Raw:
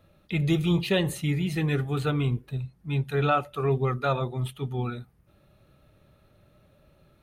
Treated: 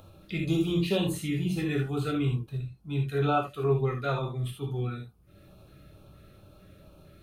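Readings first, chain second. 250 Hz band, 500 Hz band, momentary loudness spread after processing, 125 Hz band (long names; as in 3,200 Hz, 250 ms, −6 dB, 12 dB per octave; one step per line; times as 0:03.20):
−1.0 dB, −1.5 dB, 9 LU, −3.0 dB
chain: upward compression, threshold −40 dBFS
auto-filter notch square 2.2 Hz 910–1,900 Hz
reverb whose tail is shaped and stops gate 100 ms flat, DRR 0 dB
level −5 dB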